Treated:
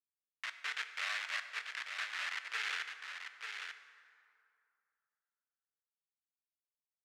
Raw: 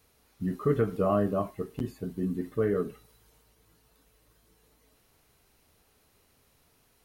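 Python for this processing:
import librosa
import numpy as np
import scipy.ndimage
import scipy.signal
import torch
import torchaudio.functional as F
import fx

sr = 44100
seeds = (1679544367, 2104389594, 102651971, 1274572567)

y = fx.wiener(x, sr, points=41)
y = fx.doppler_pass(y, sr, speed_mps=8, closest_m=8.8, pass_at_s=3.24)
y = fx.quant_dither(y, sr, seeds[0], bits=8, dither='none')
y = fx.level_steps(y, sr, step_db=13)
y = fx.quant_companded(y, sr, bits=2)
y = scipy.signal.sosfilt(scipy.signal.cheby1(3, 1.0, 1800.0, 'highpass', fs=sr, output='sos'), y)
y = fx.spacing_loss(y, sr, db_at_10k=26)
y = y + 10.0 ** (-6.5 / 20.0) * np.pad(y, (int(890 * sr / 1000.0), 0))[:len(y)]
y = fx.rev_plate(y, sr, seeds[1], rt60_s=2.5, hf_ratio=0.55, predelay_ms=0, drr_db=9.0)
y = y * 10.0 ** (9.5 / 20.0)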